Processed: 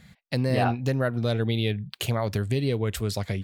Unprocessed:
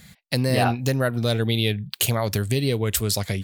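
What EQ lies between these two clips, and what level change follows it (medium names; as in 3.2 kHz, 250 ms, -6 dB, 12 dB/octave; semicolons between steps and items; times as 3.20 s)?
low-pass 2.4 kHz 6 dB/octave; -2.5 dB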